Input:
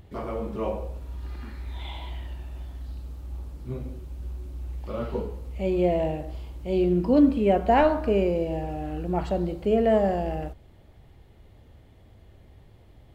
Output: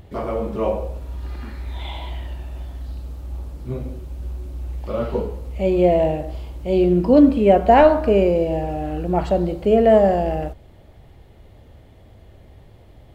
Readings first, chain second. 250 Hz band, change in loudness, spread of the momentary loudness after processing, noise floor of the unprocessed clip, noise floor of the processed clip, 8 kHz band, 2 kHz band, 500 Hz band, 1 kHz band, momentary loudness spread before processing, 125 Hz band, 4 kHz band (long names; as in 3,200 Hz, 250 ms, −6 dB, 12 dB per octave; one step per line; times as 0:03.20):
+6.0 dB, +8.0 dB, 20 LU, −53 dBFS, −48 dBFS, can't be measured, +5.5 dB, +8.0 dB, +7.5 dB, 18 LU, +5.5 dB, +5.5 dB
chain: parametric band 600 Hz +3.5 dB 0.71 octaves
level +5.5 dB